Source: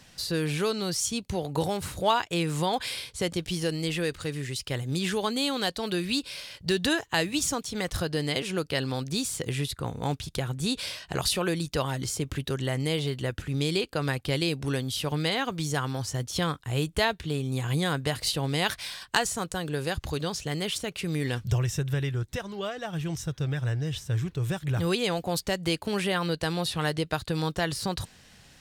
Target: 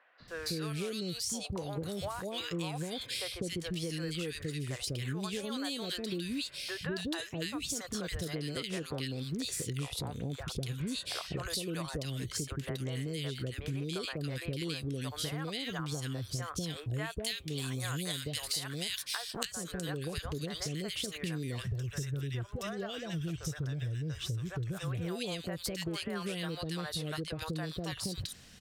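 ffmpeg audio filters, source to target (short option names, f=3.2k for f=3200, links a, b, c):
-filter_complex "[0:a]asettb=1/sr,asplit=3[a][b][c];[a]atrim=end=16.954[d];[b]atrim=start=16.95:end=19.17,asetpts=PTS-STARTPTS,afade=t=in:d=0.004:c=qsin,afade=t=out:st=2.216:d=0.004:c=qsin,highshelf=f=2.2k:g=12[e];[c]atrim=start=19.166[f];[d][e]acrossfade=d=0.004:c1=hsin:c2=qsin[g];[g][f]acrossfade=d=0.004:c1=qsin:c2=hsin,acrossover=split=580|1900[h][i][j];[h]adelay=200[k];[j]adelay=280[l];[k][i][l]amix=inputs=3:normalize=0,acompressor=threshold=-33dB:ratio=8,equalizer=f=860:w=4.2:g=-7.5"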